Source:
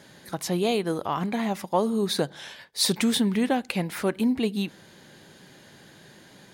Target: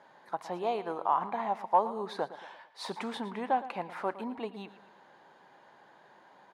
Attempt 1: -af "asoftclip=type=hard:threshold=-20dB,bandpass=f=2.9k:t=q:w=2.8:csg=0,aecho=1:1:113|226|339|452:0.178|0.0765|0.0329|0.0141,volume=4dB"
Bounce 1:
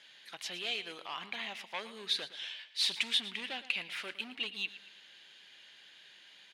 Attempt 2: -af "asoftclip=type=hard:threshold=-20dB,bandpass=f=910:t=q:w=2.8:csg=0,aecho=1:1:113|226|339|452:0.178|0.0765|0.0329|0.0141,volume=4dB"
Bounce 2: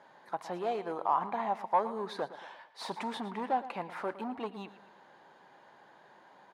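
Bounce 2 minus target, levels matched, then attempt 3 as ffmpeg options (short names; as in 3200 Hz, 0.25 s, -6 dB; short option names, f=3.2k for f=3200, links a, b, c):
hard clip: distortion +16 dB
-af "asoftclip=type=hard:threshold=-14dB,bandpass=f=910:t=q:w=2.8:csg=0,aecho=1:1:113|226|339|452:0.178|0.0765|0.0329|0.0141,volume=4dB"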